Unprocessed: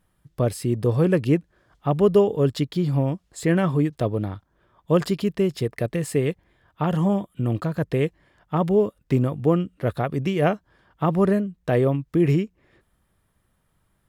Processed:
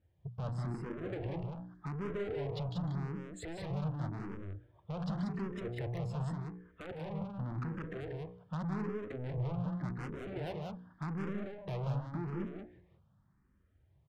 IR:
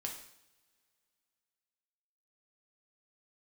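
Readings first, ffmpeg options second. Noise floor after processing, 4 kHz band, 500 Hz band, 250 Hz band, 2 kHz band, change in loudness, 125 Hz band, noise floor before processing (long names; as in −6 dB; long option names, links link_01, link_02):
−70 dBFS, −15.5 dB, −20.0 dB, −17.0 dB, −14.5 dB, −16.5 dB, −13.5 dB, −69 dBFS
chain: -filter_complex "[0:a]highpass=85,afftdn=noise_reduction=12:noise_floor=-40,lowpass=9800,aemphasis=mode=reproduction:type=riaa,bandreject=frequency=60:width_type=h:width=6,bandreject=frequency=120:width_type=h:width=6,bandreject=frequency=180:width_type=h:width=6,bandreject=frequency=240:width_type=h:width=6,bandreject=frequency=300:width_type=h:width=6,bandreject=frequency=360:width_type=h:width=6,bandreject=frequency=420:width_type=h:width=6,bandreject=frequency=480:width_type=h:width=6,adynamicequalizer=threshold=0.01:dfrequency=1500:dqfactor=1.4:tfrequency=1500:tqfactor=1.4:attack=5:release=100:ratio=0.375:range=3.5:mode=boostabove:tftype=bell,alimiter=limit=-11dB:level=0:latency=1:release=30,acompressor=threshold=-32dB:ratio=3,asoftclip=type=tanh:threshold=-38.5dB,aeval=exprs='0.0119*(cos(1*acos(clip(val(0)/0.0119,-1,1)))-cos(1*PI/2))+0.000075*(cos(5*acos(clip(val(0)/0.0119,-1,1)))-cos(5*PI/2))':channel_layout=same,asplit=2[link_01][link_02];[link_02]aecho=0:1:154.5|186.6:0.282|0.631[link_03];[link_01][link_03]amix=inputs=2:normalize=0,asplit=2[link_04][link_05];[link_05]afreqshift=0.87[link_06];[link_04][link_06]amix=inputs=2:normalize=1,volume=4dB"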